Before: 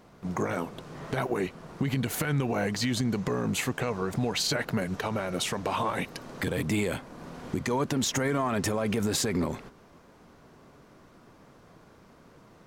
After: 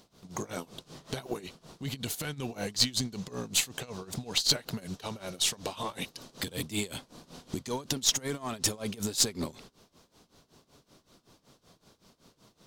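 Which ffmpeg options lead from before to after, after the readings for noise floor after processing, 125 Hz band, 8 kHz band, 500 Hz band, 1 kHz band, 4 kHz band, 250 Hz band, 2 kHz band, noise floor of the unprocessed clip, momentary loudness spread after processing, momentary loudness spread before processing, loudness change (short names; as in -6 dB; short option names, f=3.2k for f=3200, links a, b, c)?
-72 dBFS, -8.5 dB, +4.0 dB, -8.5 dB, -9.0 dB, +4.0 dB, -8.0 dB, -7.0 dB, -56 dBFS, 14 LU, 8 LU, -2.0 dB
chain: -af "highshelf=f=2.7k:t=q:w=1.5:g=10,tremolo=f=5.3:d=0.88,aeval=exprs='0.422*(cos(1*acos(clip(val(0)/0.422,-1,1)))-cos(1*PI/2))+0.0531*(cos(3*acos(clip(val(0)/0.422,-1,1)))-cos(3*PI/2))+0.0188*(cos(4*acos(clip(val(0)/0.422,-1,1)))-cos(4*PI/2))':c=same"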